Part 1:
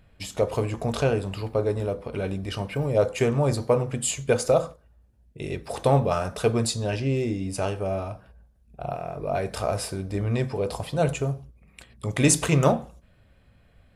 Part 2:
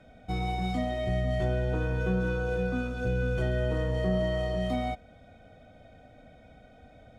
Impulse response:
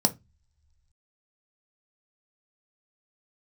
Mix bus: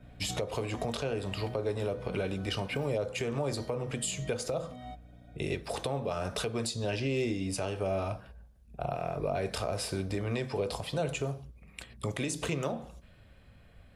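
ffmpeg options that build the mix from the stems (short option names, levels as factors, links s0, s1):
-filter_complex "[0:a]adynamicequalizer=threshold=0.00631:dfrequency=3500:dqfactor=0.74:tfrequency=3500:tqfactor=0.74:attack=5:release=100:ratio=0.375:range=3:mode=boostabove:tftype=bell,volume=1.12,asplit=2[s0][s1];[1:a]aecho=1:1:7:0.63,aeval=exprs='val(0)+0.00708*(sin(2*PI*60*n/s)+sin(2*PI*2*60*n/s)/2+sin(2*PI*3*60*n/s)/3+sin(2*PI*4*60*n/s)/4+sin(2*PI*5*60*n/s)/5)':c=same,volume=0.422[s2];[s1]apad=whole_len=317383[s3];[s2][s3]sidechaincompress=threshold=0.0447:ratio=5:attack=5.8:release=560[s4];[s0][s4]amix=inputs=2:normalize=0,acrossover=split=260|540[s5][s6][s7];[s5]acompressor=threshold=0.0251:ratio=4[s8];[s6]acompressor=threshold=0.0501:ratio=4[s9];[s7]acompressor=threshold=0.0316:ratio=4[s10];[s8][s9][s10]amix=inputs=3:normalize=0,alimiter=limit=0.0794:level=0:latency=1:release=311"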